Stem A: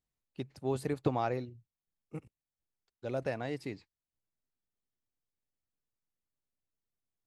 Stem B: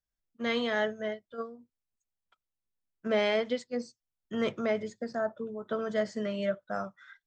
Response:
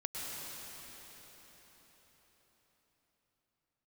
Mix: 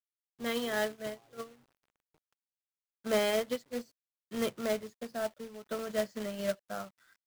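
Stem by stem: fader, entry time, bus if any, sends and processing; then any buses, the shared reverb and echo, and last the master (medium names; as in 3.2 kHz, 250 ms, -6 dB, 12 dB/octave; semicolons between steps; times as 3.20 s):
-13.0 dB, 0.00 s, send -15.5 dB, low-pass that closes with the level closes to 1.4 kHz, closed at -34 dBFS; auto duck -13 dB, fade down 1.35 s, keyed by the second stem
-1.0 dB, 0.00 s, no send, peaking EQ 2.2 kHz -5.5 dB 0.23 oct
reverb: on, RT60 5.0 s, pre-delay 98 ms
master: companded quantiser 4-bit; upward expansion 1.5:1, over -50 dBFS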